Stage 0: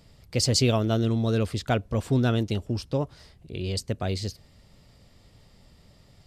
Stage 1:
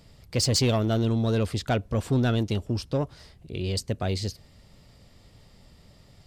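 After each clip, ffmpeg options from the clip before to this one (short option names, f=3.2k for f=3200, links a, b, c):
-af "asoftclip=type=tanh:threshold=-17.5dB,volume=1.5dB"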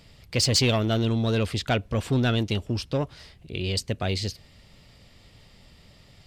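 -af "equalizer=f=2.7k:t=o:w=1.5:g=7"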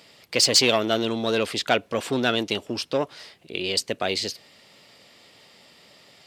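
-af "highpass=330,volume=5dB"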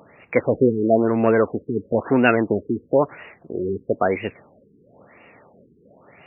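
-af "aphaser=in_gain=1:out_gain=1:delay=4.4:decay=0.2:speed=1.6:type=sinusoidal,afftfilt=real='re*lt(b*sr/1024,450*pow(2900/450,0.5+0.5*sin(2*PI*1*pts/sr)))':imag='im*lt(b*sr/1024,450*pow(2900/450,0.5+0.5*sin(2*PI*1*pts/sr)))':win_size=1024:overlap=0.75,volume=7dB"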